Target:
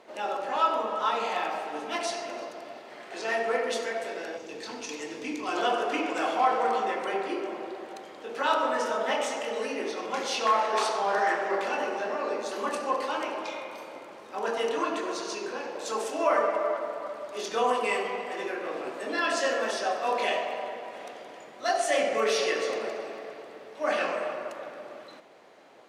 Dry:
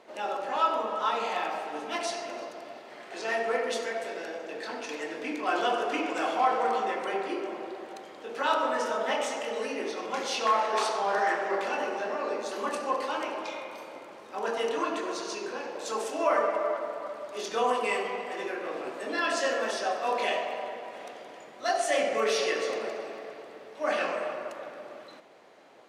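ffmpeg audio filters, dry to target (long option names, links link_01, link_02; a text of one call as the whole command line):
ffmpeg -i in.wav -filter_complex "[0:a]asettb=1/sr,asplit=3[link_01][link_02][link_03];[link_01]atrim=end=4.374[link_04];[link_02]atrim=start=4.37:end=5.57,asetpts=PTS-STARTPTS,afade=type=in:duration=0.004:curve=qsin,afade=type=out:start_time=1.196:duration=0.004:curve=qsin,equalizer=frequency=100:width_type=o:width=0.67:gain=11,equalizer=frequency=630:width_type=o:width=0.67:gain=-8,equalizer=frequency=1600:width_type=o:width=0.67:gain=-8,equalizer=frequency=6300:width_type=o:width=0.67:gain=6[link_05];[link_03]atrim=start=5.566[link_06];[link_04][link_05]acrossfade=duration=0.004:curve1=hsin:curve2=qsin[link_07];[link_07][link_06]acrossfade=duration=0.004:curve1=qsin:curve2=hsin,volume=1dB" out.wav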